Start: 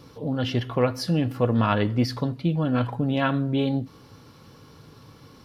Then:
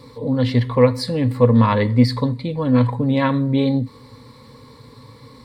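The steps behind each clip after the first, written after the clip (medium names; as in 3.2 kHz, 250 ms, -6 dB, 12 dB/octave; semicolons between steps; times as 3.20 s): rippled EQ curve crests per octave 0.98, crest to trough 13 dB; trim +3 dB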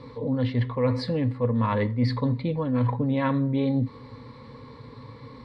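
low-pass 3 kHz 12 dB/octave; reverse; compression 6:1, threshold -21 dBFS, peak gain reduction 12.5 dB; reverse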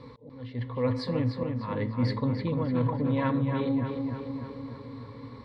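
slow attack 565 ms; on a send: filtered feedback delay 298 ms, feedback 63%, low-pass 3.6 kHz, level -5 dB; on the sum: trim -3.5 dB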